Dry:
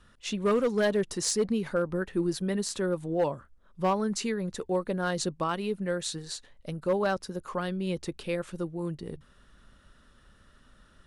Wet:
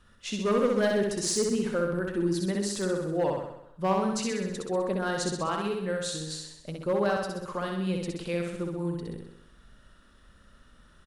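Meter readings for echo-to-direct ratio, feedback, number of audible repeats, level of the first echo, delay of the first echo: -1.0 dB, 58%, 7, -3.0 dB, 64 ms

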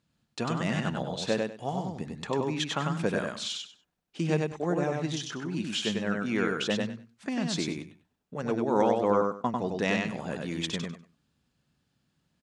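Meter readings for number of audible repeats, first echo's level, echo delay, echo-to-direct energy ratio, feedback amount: 3, -3.0 dB, 97 ms, -3.0 dB, 20%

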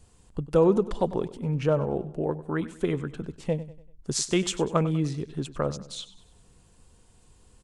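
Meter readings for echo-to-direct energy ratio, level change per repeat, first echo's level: -15.0 dB, -7.5 dB, -16.0 dB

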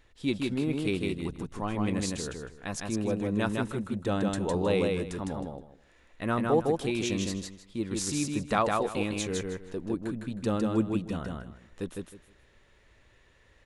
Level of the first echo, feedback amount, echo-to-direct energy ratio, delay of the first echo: -3.0 dB, 22%, -3.0 dB, 157 ms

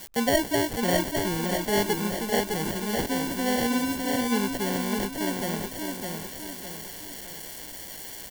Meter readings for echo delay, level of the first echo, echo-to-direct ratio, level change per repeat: 608 ms, -4.0 dB, -3.0 dB, -7.0 dB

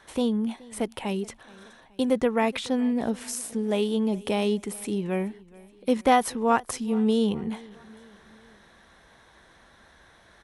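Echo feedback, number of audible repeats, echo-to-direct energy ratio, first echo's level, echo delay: 49%, 3, -21.5 dB, -22.5 dB, 424 ms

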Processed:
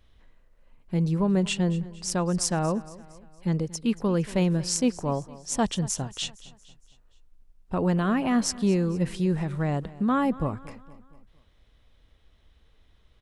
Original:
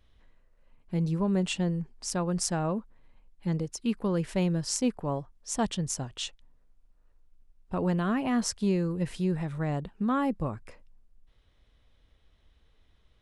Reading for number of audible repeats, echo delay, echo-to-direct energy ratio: 3, 231 ms, -18.0 dB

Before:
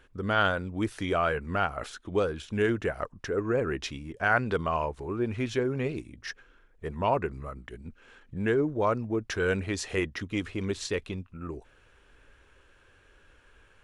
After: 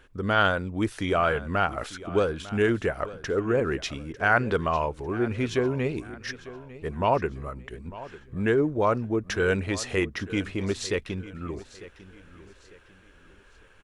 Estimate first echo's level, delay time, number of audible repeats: -17.0 dB, 899 ms, 3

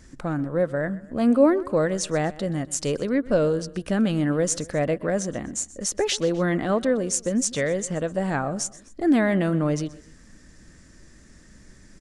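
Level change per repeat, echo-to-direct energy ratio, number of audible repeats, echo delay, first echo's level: -6.0 dB, -18.5 dB, 2, 127 ms, -19.5 dB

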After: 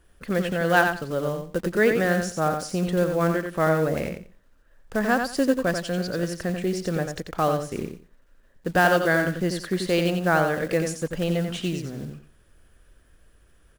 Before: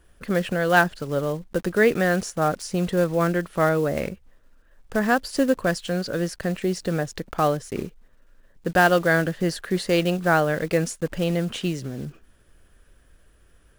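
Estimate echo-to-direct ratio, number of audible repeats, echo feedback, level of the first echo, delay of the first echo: -6.0 dB, 3, 19%, -6.0 dB, 89 ms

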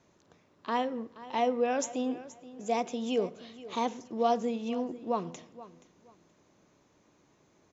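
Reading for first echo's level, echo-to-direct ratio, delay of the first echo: -17.0 dB, -17.0 dB, 476 ms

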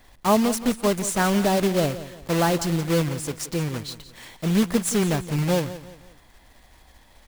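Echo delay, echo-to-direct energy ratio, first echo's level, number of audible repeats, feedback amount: 174 ms, -14.0 dB, -14.5 dB, 3, 37%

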